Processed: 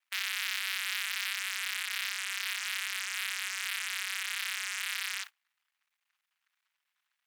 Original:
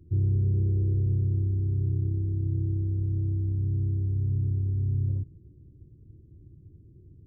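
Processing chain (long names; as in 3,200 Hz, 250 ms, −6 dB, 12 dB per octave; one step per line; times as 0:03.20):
fuzz pedal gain 51 dB, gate −58 dBFS
inverse Chebyshev high-pass filter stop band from 330 Hz, stop band 80 dB
noise gate −41 dBFS, range −30 dB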